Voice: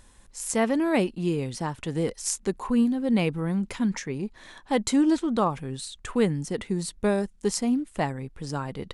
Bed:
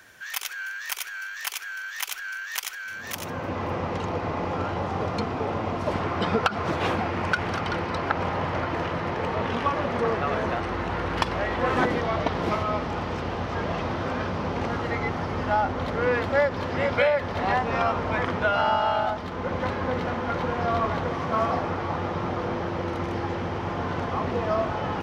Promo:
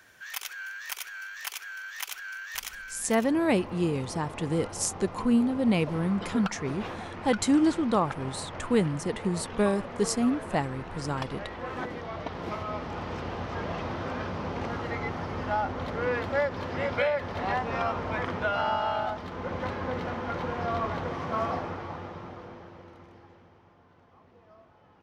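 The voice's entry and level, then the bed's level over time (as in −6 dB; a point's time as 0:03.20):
2.55 s, −1.0 dB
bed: 0:02.79 −5 dB
0:03.10 −12 dB
0:11.95 −12 dB
0:13.15 −5 dB
0:21.52 −5 dB
0:23.84 −31 dB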